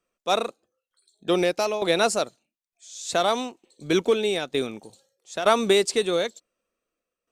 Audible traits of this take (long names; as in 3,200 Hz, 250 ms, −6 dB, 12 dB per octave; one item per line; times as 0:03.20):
tremolo saw down 1.1 Hz, depth 70%
Opus